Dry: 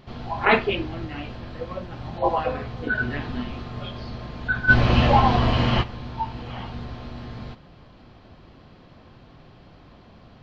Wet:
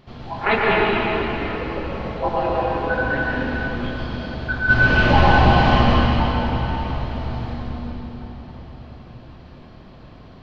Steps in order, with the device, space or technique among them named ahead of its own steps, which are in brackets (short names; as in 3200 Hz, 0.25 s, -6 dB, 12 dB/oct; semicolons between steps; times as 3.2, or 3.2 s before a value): cathedral (reverb RT60 4.8 s, pre-delay 0.107 s, DRR -4.5 dB); gain -1.5 dB